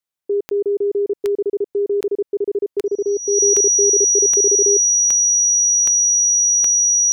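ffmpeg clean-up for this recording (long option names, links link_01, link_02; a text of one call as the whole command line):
ffmpeg -i in.wav -af "adeclick=threshold=4,bandreject=frequency=5800:width=30" out.wav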